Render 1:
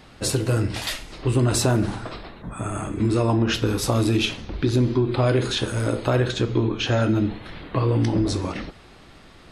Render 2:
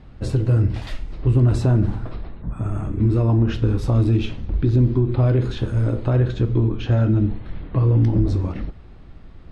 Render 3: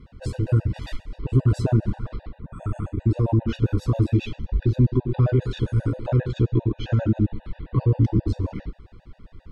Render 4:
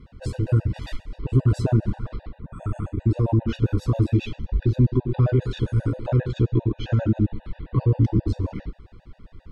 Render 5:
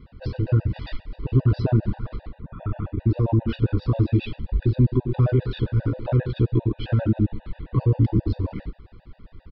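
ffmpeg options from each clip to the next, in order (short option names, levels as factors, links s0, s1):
-af "aemphasis=mode=reproduction:type=riaa,volume=0.501"
-af "afftfilt=real='re*gt(sin(2*PI*7.5*pts/sr)*(1-2*mod(floor(b*sr/1024/490),2)),0)':imag='im*gt(sin(2*PI*7.5*pts/sr)*(1-2*mod(floor(b*sr/1024/490),2)),0)':win_size=1024:overlap=0.75"
-af anull
-af "aresample=11025,aresample=44100"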